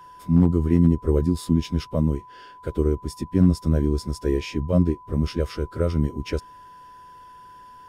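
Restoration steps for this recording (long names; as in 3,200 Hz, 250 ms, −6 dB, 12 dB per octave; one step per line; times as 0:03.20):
clipped peaks rebuilt −8 dBFS
notch filter 1,000 Hz, Q 30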